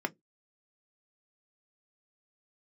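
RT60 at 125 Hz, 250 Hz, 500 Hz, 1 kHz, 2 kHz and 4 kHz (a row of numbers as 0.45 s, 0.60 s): 0.20 s, 0.20 s, 0.20 s, 0.10 s, 0.10 s, 0.10 s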